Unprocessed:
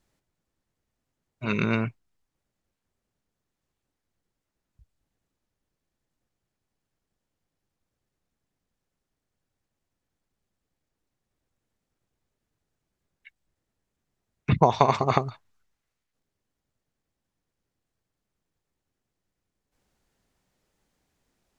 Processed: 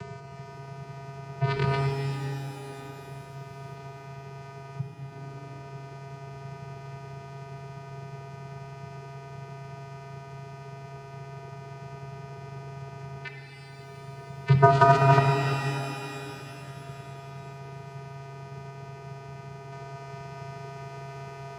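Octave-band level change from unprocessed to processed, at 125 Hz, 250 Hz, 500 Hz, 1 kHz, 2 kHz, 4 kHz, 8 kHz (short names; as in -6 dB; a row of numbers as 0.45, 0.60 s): +7.0 dB, -0.5 dB, +3.5 dB, +2.5 dB, +5.0 dB, +2.5 dB, n/a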